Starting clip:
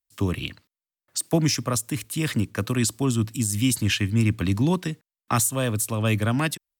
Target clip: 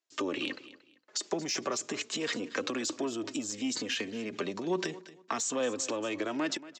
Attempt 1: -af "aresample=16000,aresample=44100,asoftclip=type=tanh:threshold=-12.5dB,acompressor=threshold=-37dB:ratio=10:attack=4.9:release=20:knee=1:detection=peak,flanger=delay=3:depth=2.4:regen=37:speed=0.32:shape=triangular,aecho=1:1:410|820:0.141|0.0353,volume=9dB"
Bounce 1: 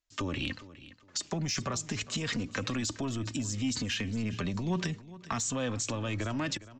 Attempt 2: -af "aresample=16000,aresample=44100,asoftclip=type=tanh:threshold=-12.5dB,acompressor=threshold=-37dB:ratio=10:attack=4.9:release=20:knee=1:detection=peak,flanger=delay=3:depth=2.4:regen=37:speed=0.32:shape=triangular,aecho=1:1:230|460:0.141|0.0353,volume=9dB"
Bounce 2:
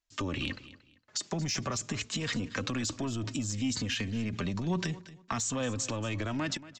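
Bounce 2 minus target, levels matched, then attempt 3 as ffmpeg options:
500 Hz band −5.5 dB
-af "aresample=16000,aresample=44100,asoftclip=type=tanh:threshold=-12.5dB,acompressor=threshold=-37dB:ratio=10:attack=4.9:release=20:knee=1:detection=peak,highpass=frequency=370:width_type=q:width=2.1,flanger=delay=3:depth=2.4:regen=37:speed=0.32:shape=triangular,aecho=1:1:230|460:0.141|0.0353,volume=9dB"

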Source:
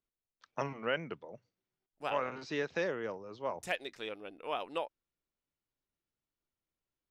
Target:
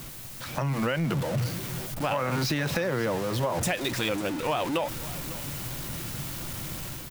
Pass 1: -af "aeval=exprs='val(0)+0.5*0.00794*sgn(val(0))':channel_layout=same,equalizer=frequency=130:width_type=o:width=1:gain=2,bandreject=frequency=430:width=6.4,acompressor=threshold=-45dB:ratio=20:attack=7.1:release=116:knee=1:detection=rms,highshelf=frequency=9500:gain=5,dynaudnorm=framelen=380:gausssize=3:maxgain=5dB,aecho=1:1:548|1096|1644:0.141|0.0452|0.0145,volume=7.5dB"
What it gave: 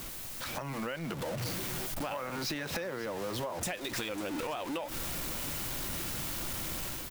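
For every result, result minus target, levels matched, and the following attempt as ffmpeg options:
downward compressor: peak gain reduction +9 dB; 125 Hz band −5.5 dB
-af "aeval=exprs='val(0)+0.5*0.00794*sgn(val(0))':channel_layout=same,equalizer=frequency=130:width_type=o:width=1:gain=2,bandreject=frequency=430:width=6.4,acompressor=threshold=-35dB:ratio=20:attack=7.1:release=116:knee=1:detection=rms,highshelf=frequency=9500:gain=5,dynaudnorm=framelen=380:gausssize=3:maxgain=5dB,aecho=1:1:548|1096|1644:0.141|0.0452|0.0145,volume=7.5dB"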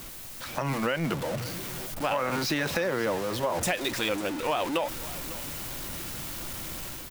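125 Hz band −6.0 dB
-af "aeval=exprs='val(0)+0.5*0.00794*sgn(val(0))':channel_layout=same,equalizer=frequency=130:width_type=o:width=1:gain=11.5,bandreject=frequency=430:width=6.4,acompressor=threshold=-35dB:ratio=20:attack=7.1:release=116:knee=1:detection=rms,highshelf=frequency=9500:gain=5,dynaudnorm=framelen=380:gausssize=3:maxgain=5dB,aecho=1:1:548|1096|1644:0.141|0.0452|0.0145,volume=7.5dB"

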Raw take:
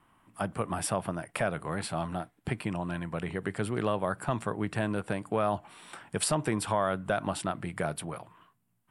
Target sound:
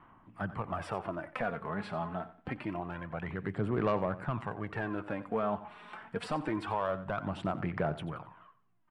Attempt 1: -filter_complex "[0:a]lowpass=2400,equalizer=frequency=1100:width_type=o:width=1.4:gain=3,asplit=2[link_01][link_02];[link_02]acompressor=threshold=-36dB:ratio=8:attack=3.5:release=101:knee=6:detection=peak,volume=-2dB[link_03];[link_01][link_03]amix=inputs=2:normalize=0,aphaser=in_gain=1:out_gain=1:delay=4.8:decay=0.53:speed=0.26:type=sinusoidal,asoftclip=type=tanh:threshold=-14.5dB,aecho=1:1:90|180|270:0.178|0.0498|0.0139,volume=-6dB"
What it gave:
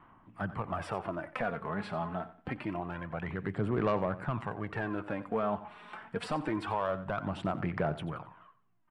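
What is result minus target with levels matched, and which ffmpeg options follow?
downward compressor: peak gain reduction −5.5 dB
-filter_complex "[0:a]lowpass=2400,equalizer=frequency=1100:width_type=o:width=1.4:gain=3,asplit=2[link_01][link_02];[link_02]acompressor=threshold=-42.5dB:ratio=8:attack=3.5:release=101:knee=6:detection=peak,volume=-2dB[link_03];[link_01][link_03]amix=inputs=2:normalize=0,aphaser=in_gain=1:out_gain=1:delay=4.8:decay=0.53:speed=0.26:type=sinusoidal,asoftclip=type=tanh:threshold=-14.5dB,aecho=1:1:90|180|270:0.178|0.0498|0.0139,volume=-6dB"

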